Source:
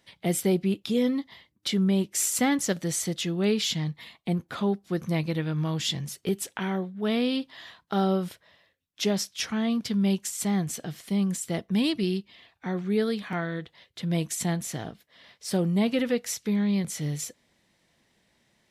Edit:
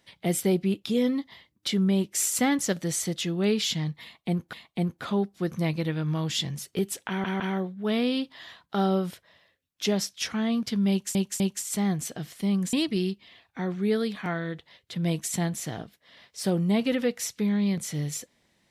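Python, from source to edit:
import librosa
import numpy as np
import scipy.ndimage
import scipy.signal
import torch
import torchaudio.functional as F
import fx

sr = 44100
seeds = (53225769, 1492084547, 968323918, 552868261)

y = fx.edit(x, sr, fx.repeat(start_s=4.03, length_s=0.5, count=2),
    fx.stutter(start_s=6.58, slice_s=0.16, count=3),
    fx.repeat(start_s=10.08, length_s=0.25, count=3),
    fx.cut(start_s=11.41, length_s=0.39), tone=tone)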